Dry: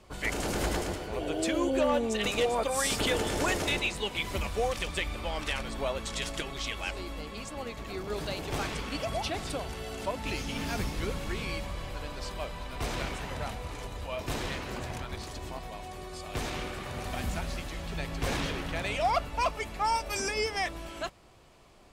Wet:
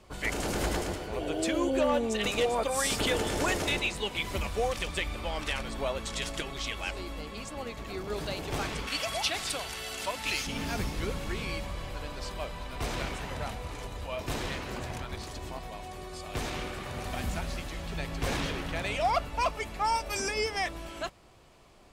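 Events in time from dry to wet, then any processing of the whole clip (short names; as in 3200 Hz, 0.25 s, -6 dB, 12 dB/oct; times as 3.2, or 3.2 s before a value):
8.87–10.47 tilt shelf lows -8 dB, about 880 Hz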